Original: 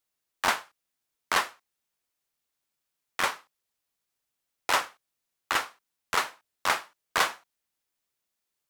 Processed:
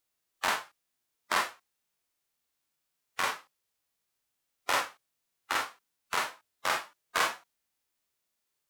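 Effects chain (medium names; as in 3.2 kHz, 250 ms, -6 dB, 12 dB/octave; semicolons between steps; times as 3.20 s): harmonic-percussive split percussive -14 dB; trim +5.5 dB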